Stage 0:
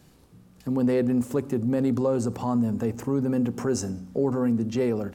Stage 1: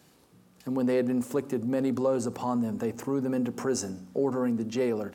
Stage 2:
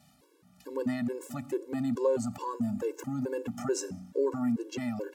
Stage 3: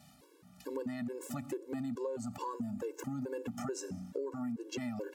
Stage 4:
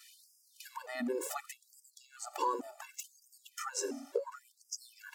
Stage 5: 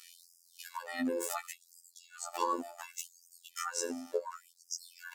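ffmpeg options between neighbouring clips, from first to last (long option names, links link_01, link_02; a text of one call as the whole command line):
ffmpeg -i in.wav -af "highpass=frequency=310:poles=1" out.wav
ffmpeg -i in.wav -af "afftfilt=real='re*gt(sin(2*PI*2.3*pts/sr)*(1-2*mod(floor(b*sr/1024/290),2)),0)':imag='im*gt(sin(2*PI*2.3*pts/sr)*(1-2*mod(floor(b*sr/1024/290),2)),0)':win_size=1024:overlap=0.75" out.wav
ffmpeg -i in.wav -af "acompressor=threshold=-38dB:ratio=6,volume=2dB" out.wav
ffmpeg -i in.wav -af "afftfilt=real='re*gte(b*sr/1024,240*pow(4900/240,0.5+0.5*sin(2*PI*0.69*pts/sr)))':imag='im*gte(b*sr/1024,240*pow(4900/240,0.5+0.5*sin(2*PI*0.69*pts/sr)))':win_size=1024:overlap=0.75,volume=7.5dB" out.wav
ffmpeg -i in.wav -af "afftfilt=real='hypot(re,im)*cos(PI*b)':imag='0':win_size=2048:overlap=0.75,volume=6dB" out.wav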